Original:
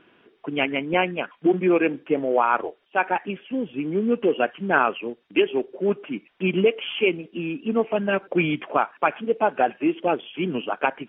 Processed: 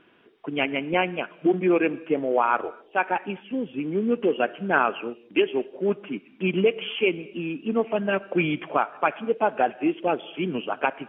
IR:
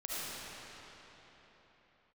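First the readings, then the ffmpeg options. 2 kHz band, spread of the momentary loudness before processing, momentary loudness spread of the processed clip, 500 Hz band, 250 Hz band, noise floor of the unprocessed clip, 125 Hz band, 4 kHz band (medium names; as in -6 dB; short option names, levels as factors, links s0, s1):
-1.5 dB, 8 LU, 7 LU, -1.5 dB, -1.5 dB, -63 dBFS, -1.5 dB, no reading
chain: -filter_complex "[0:a]asplit=2[s0][s1];[1:a]atrim=start_sample=2205,afade=t=out:st=0.31:d=0.01,atrim=end_sample=14112[s2];[s1][s2]afir=irnorm=-1:irlink=0,volume=0.0891[s3];[s0][s3]amix=inputs=2:normalize=0,volume=0.794"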